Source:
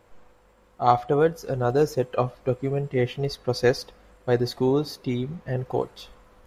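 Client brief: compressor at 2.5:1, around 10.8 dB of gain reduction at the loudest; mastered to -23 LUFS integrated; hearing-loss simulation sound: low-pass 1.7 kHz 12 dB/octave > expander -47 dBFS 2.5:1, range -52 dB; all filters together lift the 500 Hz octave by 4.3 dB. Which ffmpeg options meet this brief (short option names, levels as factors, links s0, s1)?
-af "equalizer=f=500:t=o:g=5,acompressor=threshold=0.0398:ratio=2.5,lowpass=1700,agate=range=0.00251:threshold=0.00447:ratio=2.5,volume=2.37"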